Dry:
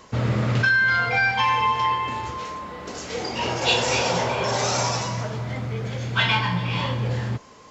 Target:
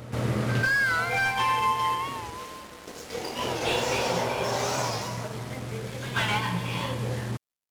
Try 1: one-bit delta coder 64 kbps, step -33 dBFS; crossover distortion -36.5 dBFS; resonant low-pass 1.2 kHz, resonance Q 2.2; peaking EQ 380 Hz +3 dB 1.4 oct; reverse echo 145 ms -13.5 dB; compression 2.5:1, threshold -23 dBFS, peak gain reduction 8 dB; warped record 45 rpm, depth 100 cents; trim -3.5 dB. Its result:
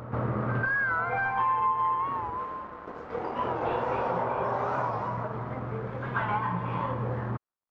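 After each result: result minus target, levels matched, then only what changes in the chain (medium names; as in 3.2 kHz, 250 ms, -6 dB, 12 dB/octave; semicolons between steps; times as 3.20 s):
compression: peak gain reduction +8 dB; 1 kHz band +3.5 dB
remove: compression 2.5:1, threshold -23 dBFS, peak gain reduction 8 dB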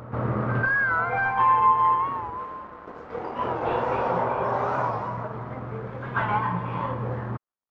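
1 kHz band +3.5 dB
remove: resonant low-pass 1.2 kHz, resonance Q 2.2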